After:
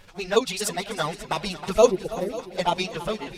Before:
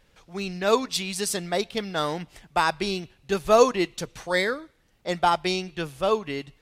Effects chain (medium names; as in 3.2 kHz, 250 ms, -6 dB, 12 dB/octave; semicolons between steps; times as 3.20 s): fade out at the end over 0.54 s; in parallel at +2 dB: compression 6:1, threshold -35 dBFS, peak gain reduction 21.5 dB; on the sum: touch-sensitive flanger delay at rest 11.2 ms, full sweep at -15.5 dBFS; time-frequency box 3.67–4.95 s, 860–9500 Hz -26 dB; reverse; upward compressor, threshold -36 dBFS; reverse; peaking EQ 300 Hz -2.5 dB 0.71 oct; shuffle delay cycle 1062 ms, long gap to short 1.5:1, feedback 55%, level -14.5 dB; granular stretch 0.51×, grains 84 ms; trim +2.5 dB